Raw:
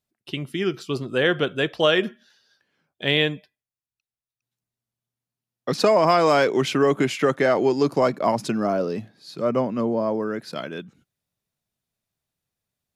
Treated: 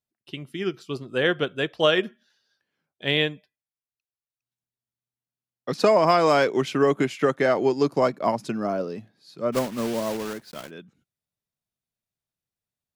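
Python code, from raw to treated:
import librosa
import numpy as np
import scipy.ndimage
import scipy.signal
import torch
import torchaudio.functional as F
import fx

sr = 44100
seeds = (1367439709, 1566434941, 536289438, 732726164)

y = fx.block_float(x, sr, bits=3, at=(9.52, 10.69), fade=0.02)
y = fx.upward_expand(y, sr, threshold_db=-31.0, expansion=1.5)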